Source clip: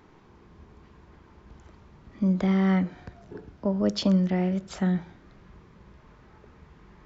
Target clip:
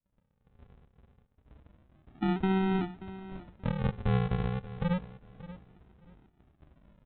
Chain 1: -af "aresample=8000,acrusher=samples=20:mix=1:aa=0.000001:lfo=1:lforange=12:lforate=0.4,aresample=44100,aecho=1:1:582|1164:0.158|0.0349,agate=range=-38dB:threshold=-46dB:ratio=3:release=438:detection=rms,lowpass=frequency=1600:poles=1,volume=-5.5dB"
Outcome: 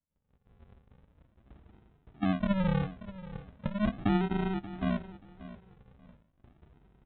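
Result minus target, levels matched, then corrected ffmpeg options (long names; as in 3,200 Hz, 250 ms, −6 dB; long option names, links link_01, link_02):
sample-and-hold swept by an LFO: distortion −4 dB
-af "aresample=8000,acrusher=samples=20:mix=1:aa=0.000001:lfo=1:lforange=12:lforate=0.29,aresample=44100,aecho=1:1:582|1164:0.158|0.0349,agate=range=-38dB:threshold=-46dB:ratio=3:release=438:detection=rms,lowpass=frequency=1600:poles=1,volume=-5.5dB"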